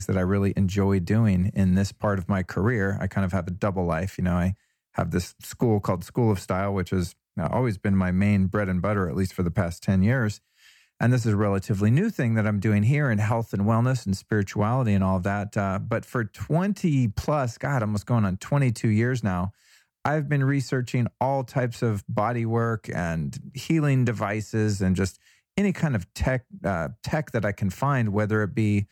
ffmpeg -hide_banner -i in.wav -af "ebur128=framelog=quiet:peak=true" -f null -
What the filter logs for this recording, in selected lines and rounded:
Integrated loudness:
  I:         -25.0 LUFS
  Threshold: -35.2 LUFS
Loudness range:
  LRA:         3.0 LU
  Threshold: -45.3 LUFS
  LRA low:   -26.7 LUFS
  LRA high:  -23.7 LUFS
True peak:
  Peak:       -8.4 dBFS